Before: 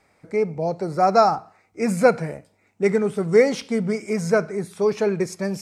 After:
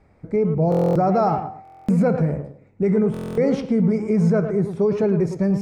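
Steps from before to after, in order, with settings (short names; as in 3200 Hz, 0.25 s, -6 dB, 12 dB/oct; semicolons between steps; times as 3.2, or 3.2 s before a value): tilt -4 dB/oct; de-hum 256.8 Hz, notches 32; limiter -12 dBFS, peak gain reduction 11.5 dB; tape echo 0.108 s, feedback 27%, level -6 dB, low-pass 1400 Hz; stuck buffer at 0.7/1.63/3.12, samples 1024, times 10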